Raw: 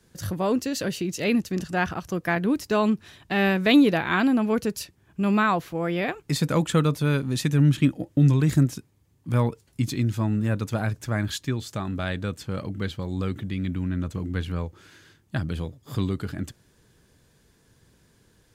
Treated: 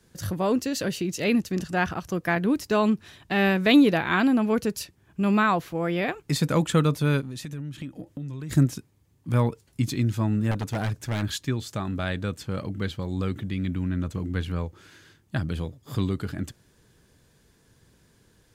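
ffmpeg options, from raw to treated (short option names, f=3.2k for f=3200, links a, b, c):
-filter_complex "[0:a]asplit=3[a][b][c];[a]afade=t=out:st=7.2:d=0.02[d];[b]acompressor=threshold=-33dB:ratio=6:attack=3.2:release=140:knee=1:detection=peak,afade=t=in:st=7.2:d=0.02,afade=t=out:st=8.5:d=0.02[e];[c]afade=t=in:st=8.5:d=0.02[f];[d][e][f]amix=inputs=3:normalize=0,asettb=1/sr,asplit=3[g][h][i];[g]atrim=end=10.514[j];[h]atrim=start=10.51:end=11.23,asetpts=PTS-STARTPTS,afade=t=in:d=0.004:c=qsin,afade=t=out:st=0.716:d=0.004:c=qsin,aeval=exprs='0.0891*(abs(mod(val(0)/0.0891+3,4)-2)-1)':c=same[k];[i]atrim=start=11.226[l];[j][k]acrossfade=d=0.004:c1=hsin:c2=qsin[m];[m][l]acrossfade=d=0.004:c1=qsin:c2=hsin"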